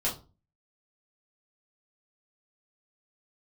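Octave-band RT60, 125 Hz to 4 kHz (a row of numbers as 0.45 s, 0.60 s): 0.50 s, 0.45 s, 0.35 s, 0.30 s, 0.20 s, 0.25 s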